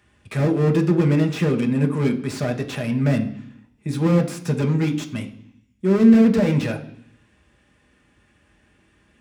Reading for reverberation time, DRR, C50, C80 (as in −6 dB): 0.65 s, 4.0 dB, 13.0 dB, 16.5 dB